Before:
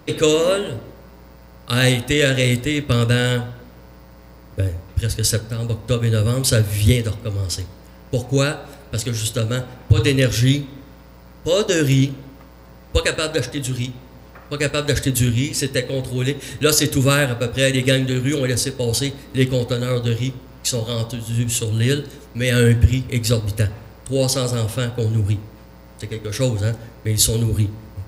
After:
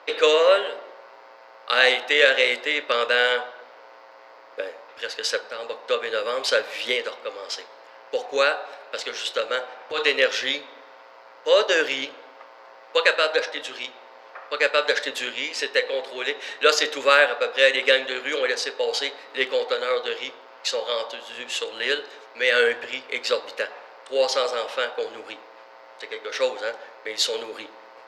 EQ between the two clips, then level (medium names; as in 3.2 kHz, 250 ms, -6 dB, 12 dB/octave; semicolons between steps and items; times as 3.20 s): high-pass 560 Hz 24 dB/octave; distance through air 210 m; +5.5 dB